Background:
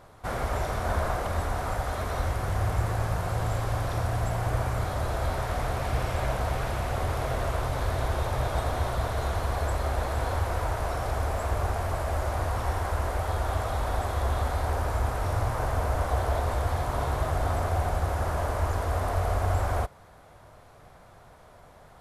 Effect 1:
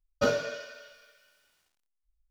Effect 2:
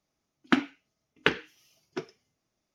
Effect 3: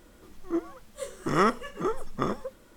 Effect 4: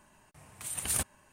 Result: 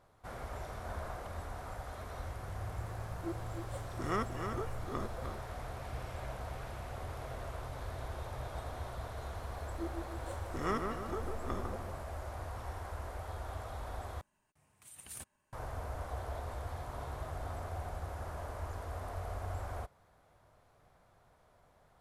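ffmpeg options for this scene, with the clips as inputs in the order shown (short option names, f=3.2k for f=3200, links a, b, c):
-filter_complex "[3:a]asplit=2[a][b];[0:a]volume=-14dB[c];[a]aecho=1:1:305:0.473[d];[b]asplit=2[e][f];[f]adelay=151,lowpass=f=2k:p=1,volume=-4dB,asplit=2[g][h];[h]adelay=151,lowpass=f=2k:p=1,volume=0.54,asplit=2[i][j];[j]adelay=151,lowpass=f=2k:p=1,volume=0.54,asplit=2[k][l];[l]adelay=151,lowpass=f=2k:p=1,volume=0.54,asplit=2[m][n];[n]adelay=151,lowpass=f=2k:p=1,volume=0.54,asplit=2[o][p];[p]adelay=151,lowpass=f=2k:p=1,volume=0.54,asplit=2[q][r];[r]adelay=151,lowpass=f=2k:p=1,volume=0.54[s];[e][g][i][k][m][o][q][s]amix=inputs=8:normalize=0[t];[c]asplit=2[u][v];[u]atrim=end=14.214[w];[4:a]atrim=end=1.32,asetpts=PTS-STARTPTS,volume=-16.5dB[x];[v]atrim=start=15.526[y];[d]atrim=end=2.76,asetpts=PTS-STARTPTS,volume=-12dB,afade=t=in:d=0.004:c=hsin,afade=t=out:st=2.756:d=0.004:c=hsin,adelay=2730[z];[t]atrim=end=2.76,asetpts=PTS-STARTPTS,volume=-12.5dB,afade=t=in:d=0.004:c=hsin,afade=t=out:st=2.756:d=0.004:c=hsin,adelay=9280[aa];[w][x]acrossfade=d=0.004:c1=hsin:c2=hsin[ab];[ab][y]acrossfade=d=0.004:c1=hsin:c2=hsin[ac];[ac][z][aa]amix=inputs=3:normalize=0"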